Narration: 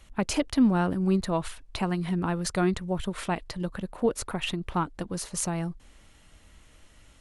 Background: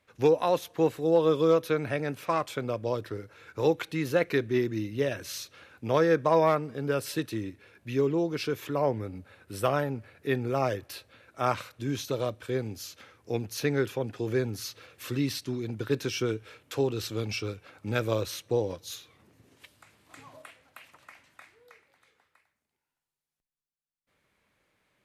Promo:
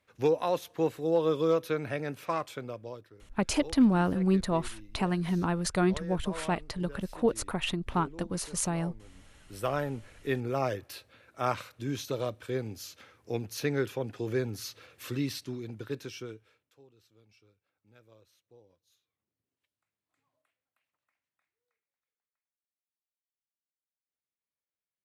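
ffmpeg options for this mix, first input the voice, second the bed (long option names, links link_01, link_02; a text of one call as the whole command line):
ffmpeg -i stem1.wav -i stem2.wav -filter_complex "[0:a]adelay=3200,volume=-1dB[link_01];[1:a]volume=13.5dB,afade=type=out:start_time=2.31:duration=0.8:silence=0.158489,afade=type=in:start_time=9.11:duration=0.76:silence=0.141254,afade=type=out:start_time=15.1:duration=1.64:silence=0.0354813[link_02];[link_01][link_02]amix=inputs=2:normalize=0" out.wav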